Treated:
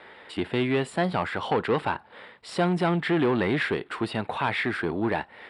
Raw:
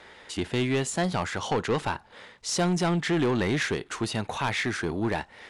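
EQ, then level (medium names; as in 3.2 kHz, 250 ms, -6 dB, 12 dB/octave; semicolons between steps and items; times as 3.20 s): boxcar filter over 7 samples; high-pass 180 Hz 6 dB/octave; +3.0 dB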